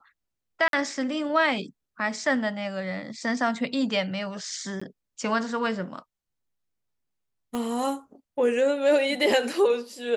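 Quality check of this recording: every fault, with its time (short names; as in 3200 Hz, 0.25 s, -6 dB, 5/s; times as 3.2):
0.68–0.73 gap 52 ms
4.8–4.82 gap 15 ms
7.55 pop -18 dBFS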